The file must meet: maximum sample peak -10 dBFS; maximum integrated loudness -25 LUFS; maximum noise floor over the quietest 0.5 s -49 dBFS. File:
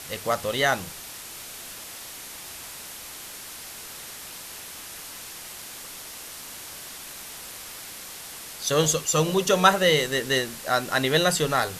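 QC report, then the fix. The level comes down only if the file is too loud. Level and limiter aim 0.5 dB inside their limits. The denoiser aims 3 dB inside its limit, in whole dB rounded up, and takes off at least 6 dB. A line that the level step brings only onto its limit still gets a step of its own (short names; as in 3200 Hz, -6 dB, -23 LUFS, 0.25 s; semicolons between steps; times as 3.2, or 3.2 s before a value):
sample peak -3.5 dBFS: fail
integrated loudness -23.0 LUFS: fail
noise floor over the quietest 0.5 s -40 dBFS: fail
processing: denoiser 10 dB, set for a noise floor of -40 dBFS; gain -2.5 dB; limiter -10.5 dBFS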